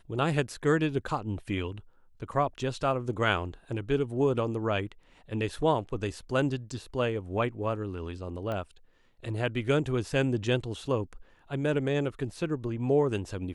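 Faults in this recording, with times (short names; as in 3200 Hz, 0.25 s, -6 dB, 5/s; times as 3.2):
8.52 pop -22 dBFS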